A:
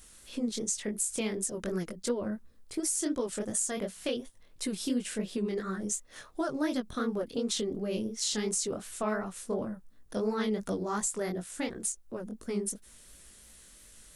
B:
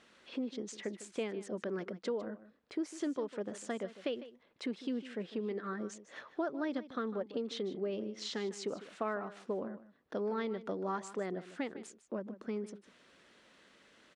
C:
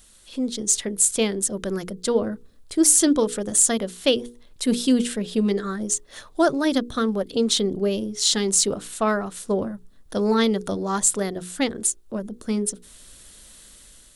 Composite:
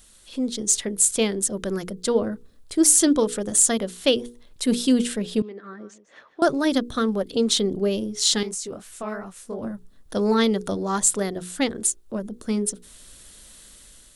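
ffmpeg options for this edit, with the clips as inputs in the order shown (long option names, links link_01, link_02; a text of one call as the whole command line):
ffmpeg -i take0.wav -i take1.wav -i take2.wav -filter_complex "[2:a]asplit=3[link_01][link_02][link_03];[link_01]atrim=end=5.422[link_04];[1:a]atrim=start=5.418:end=6.422[link_05];[link_02]atrim=start=6.418:end=8.432[link_06];[0:a]atrim=start=8.428:end=9.632[link_07];[link_03]atrim=start=9.628[link_08];[link_04][link_05]acrossfade=duration=0.004:curve1=hsin:curve2=hsin[link_09];[link_09][link_06]acrossfade=duration=0.004:curve1=hsin:curve2=hsin[link_10];[link_10][link_07]acrossfade=duration=0.004:curve1=hsin:curve2=hsin[link_11];[link_11][link_08]acrossfade=duration=0.004:curve1=hsin:curve2=hsin" out.wav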